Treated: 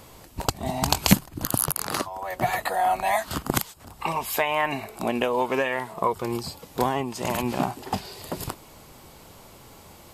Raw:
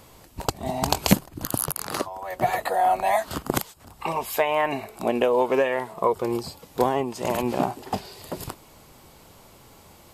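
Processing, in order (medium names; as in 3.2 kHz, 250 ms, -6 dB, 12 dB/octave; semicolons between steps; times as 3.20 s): dynamic bell 480 Hz, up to -8 dB, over -35 dBFS, Q 0.95; trim +2.5 dB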